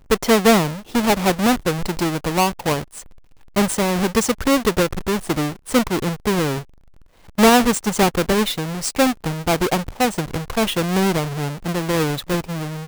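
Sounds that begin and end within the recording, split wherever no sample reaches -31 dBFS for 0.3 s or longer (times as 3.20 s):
3.56–6.61 s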